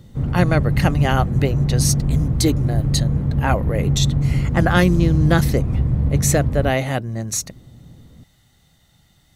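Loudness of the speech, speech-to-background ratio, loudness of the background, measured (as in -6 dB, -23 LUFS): -21.5 LUFS, -1.0 dB, -20.5 LUFS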